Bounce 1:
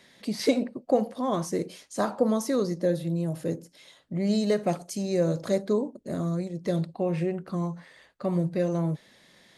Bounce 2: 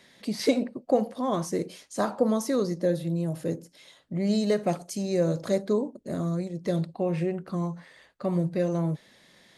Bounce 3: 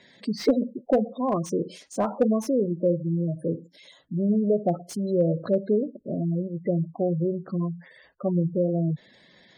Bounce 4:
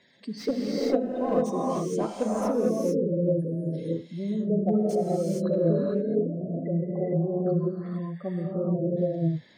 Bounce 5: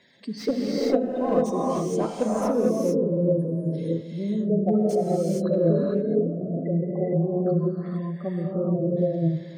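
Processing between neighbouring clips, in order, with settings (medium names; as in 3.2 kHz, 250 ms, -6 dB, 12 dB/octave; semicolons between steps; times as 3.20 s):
no audible change
spectral gate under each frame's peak -15 dB strong; slew-rate limiter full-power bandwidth 75 Hz; trim +2.5 dB
gated-style reverb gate 480 ms rising, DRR -5 dB; trim -7 dB
feedback echo behind a low-pass 140 ms, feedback 74%, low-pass 930 Hz, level -17.5 dB; trim +2.5 dB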